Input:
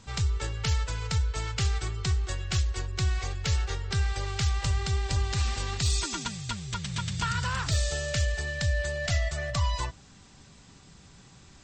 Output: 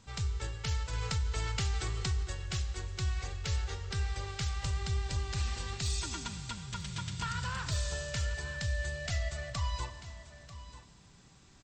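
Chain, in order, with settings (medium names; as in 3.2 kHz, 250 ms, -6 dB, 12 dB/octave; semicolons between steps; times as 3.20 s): delay 941 ms -14.5 dB; Schroeder reverb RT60 2.1 s, combs from 30 ms, DRR 10.5 dB; 0.93–2.23 s: level flattener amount 50%; trim -7 dB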